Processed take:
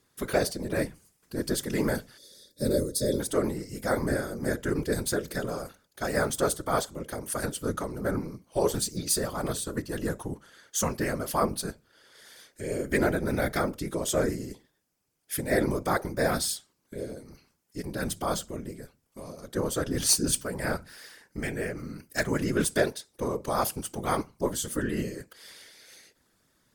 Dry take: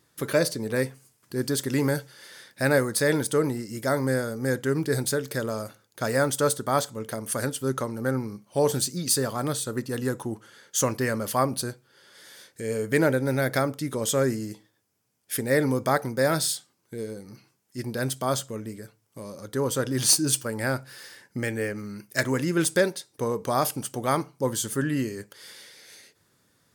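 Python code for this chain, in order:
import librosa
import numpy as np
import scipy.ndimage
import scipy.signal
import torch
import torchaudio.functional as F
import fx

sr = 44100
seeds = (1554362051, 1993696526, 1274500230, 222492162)

y = fx.whisperise(x, sr, seeds[0])
y = fx.spec_box(y, sr, start_s=2.18, length_s=1.02, low_hz=610.0, high_hz=3300.0, gain_db=-19)
y = F.gain(torch.from_numpy(y), -3.0).numpy()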